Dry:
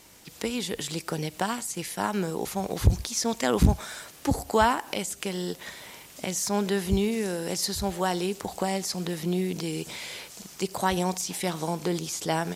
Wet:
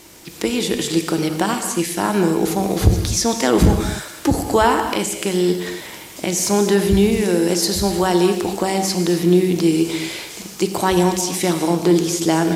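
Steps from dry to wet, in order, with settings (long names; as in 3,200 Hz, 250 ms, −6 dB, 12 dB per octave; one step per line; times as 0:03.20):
parametric band 330 Hz +10.5 dB 0.28 octaves
in parallel at +0.5 dB: brickwall limiter −16.5 dBFS, peak gain reduction 11.5 dB
on the sum: reverb whose tail is shaped and stops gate 290 ms flat, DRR 5.5 dB
level +2 dB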